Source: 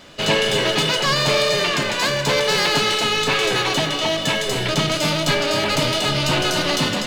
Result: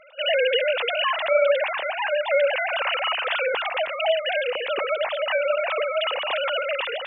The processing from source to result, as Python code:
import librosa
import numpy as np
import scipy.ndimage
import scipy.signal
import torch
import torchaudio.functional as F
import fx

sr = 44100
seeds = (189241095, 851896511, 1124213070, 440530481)

y = fx.sine_speech(x, sr)
y = y * 10.0 ** (-4.0 / 20.0)